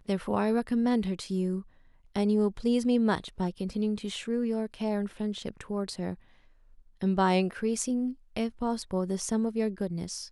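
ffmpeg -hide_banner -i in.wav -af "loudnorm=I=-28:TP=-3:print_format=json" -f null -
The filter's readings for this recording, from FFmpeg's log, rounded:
"input_i" : "-30.2",
"input_tp" : "-12.6",
"input_lra" : "3.0",
"input_thresh" : "-40.5",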